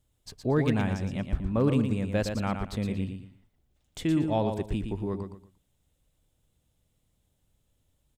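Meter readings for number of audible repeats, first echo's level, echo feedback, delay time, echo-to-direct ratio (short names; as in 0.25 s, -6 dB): 3, -6.5 dB, 27%, 0.116 s, -6.0 dB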